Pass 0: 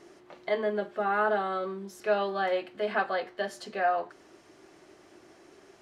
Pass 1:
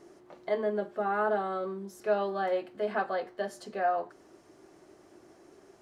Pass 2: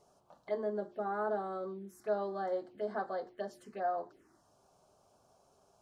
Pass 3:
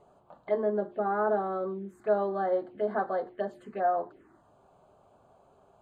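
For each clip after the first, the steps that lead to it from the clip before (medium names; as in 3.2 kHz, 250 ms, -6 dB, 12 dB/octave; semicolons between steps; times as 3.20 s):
peaking EQ 2.8 kHz -8 dB 2.1 oct
touch-sensitive phaser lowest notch 280 Hz, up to 2.6 kHz, full sweep at -30 dBFS; trim -5 dB
boxcar filter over 8 samples; trim +7.5 dB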